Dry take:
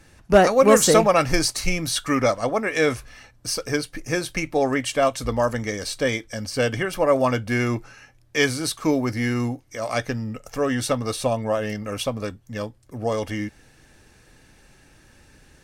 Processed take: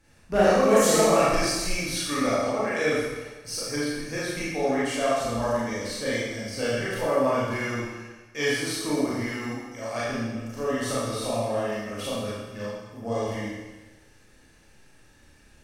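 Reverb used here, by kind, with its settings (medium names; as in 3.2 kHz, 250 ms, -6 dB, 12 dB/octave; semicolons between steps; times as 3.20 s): Schroeder reverb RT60 1.2 s, combs from 27 ms, DRR -8.5 dB; trim -12.5 dB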